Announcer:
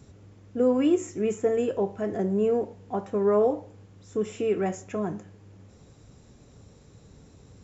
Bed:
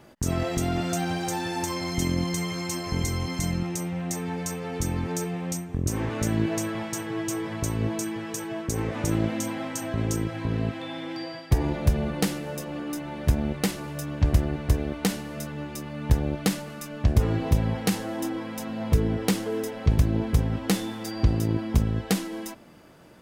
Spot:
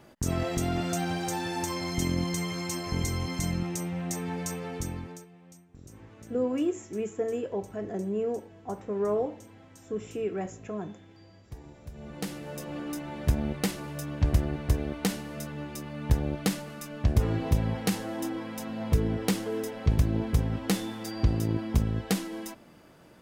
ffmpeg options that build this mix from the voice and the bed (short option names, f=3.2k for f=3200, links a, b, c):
-filter_complex "[0:a]adelay=5750,volume=-6dB[a];[1:a]volume=17dB,afade=t=out:st=4.58:d=0.68:silence=0.1,afade=t=in:st=11.92:d=0.82:silence=0.105925[b];[a][b]amix=inputs=2:normalize=0"